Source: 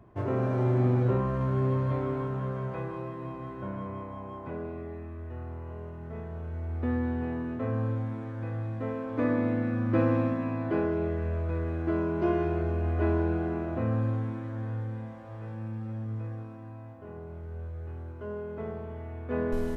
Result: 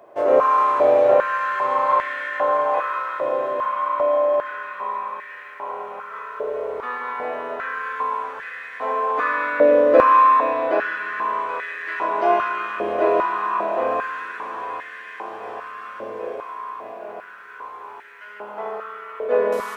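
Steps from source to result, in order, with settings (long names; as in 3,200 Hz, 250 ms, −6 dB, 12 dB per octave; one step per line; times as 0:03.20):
high-shelf EQ 2,900 Hz +7 dB
feedback delay with all-pass diffusion 921 ms, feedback 71%, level −12 dB
spring reverb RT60 3.4 s, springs 34 ms, chirp 75 ms, DRR −2 dB
high-pass on a step sequencer 2.5 Hz 560–1,800 Hz
level +6.5 dB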